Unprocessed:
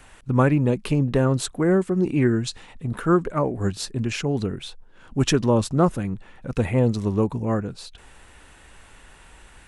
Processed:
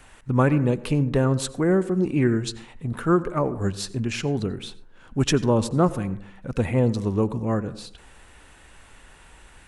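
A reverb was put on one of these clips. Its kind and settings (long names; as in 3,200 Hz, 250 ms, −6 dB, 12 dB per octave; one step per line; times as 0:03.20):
dense smooth reverb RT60 0.6 s, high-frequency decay 0.3×, pre-delay 75 ms, DRR 16 dB
level −1 dB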